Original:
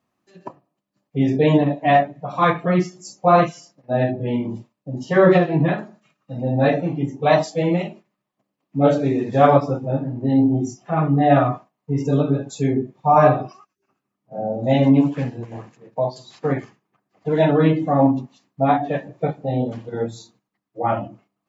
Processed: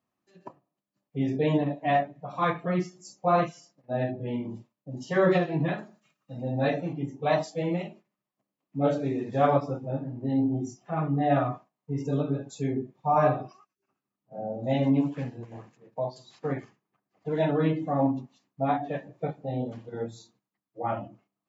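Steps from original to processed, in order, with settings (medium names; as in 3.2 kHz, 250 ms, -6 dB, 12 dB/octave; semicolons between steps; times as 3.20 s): 4.91–6.93 s: treble shelf 3.5 kHz +7.5 dB; trim -9 dB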